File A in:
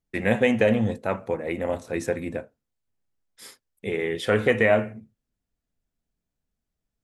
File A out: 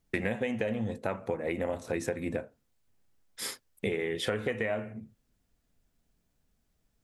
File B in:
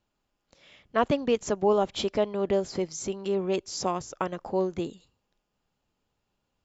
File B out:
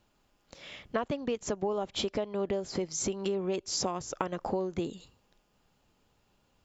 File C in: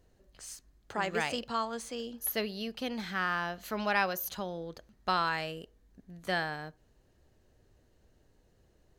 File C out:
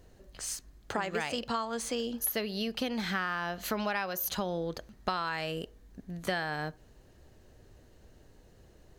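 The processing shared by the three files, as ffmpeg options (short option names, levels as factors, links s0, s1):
-af "acompressor=threshold=0.0141:ratio=10,volume=2.66"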